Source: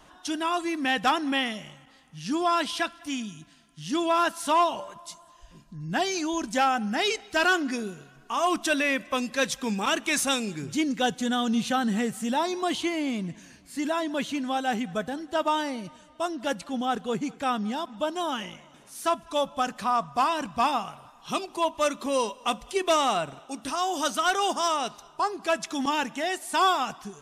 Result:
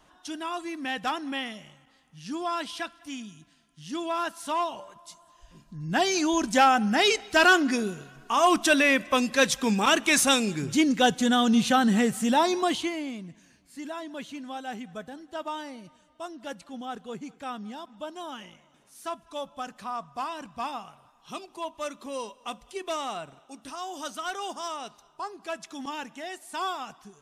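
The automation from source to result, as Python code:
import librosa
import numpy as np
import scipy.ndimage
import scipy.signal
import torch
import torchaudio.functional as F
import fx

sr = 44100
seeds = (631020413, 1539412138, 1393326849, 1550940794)

y = fx.gain(x, sr, db=fx.line((4.99, -6.0), (6.22, 4.0), (12.56, 4.0), (13.24, -9.0)))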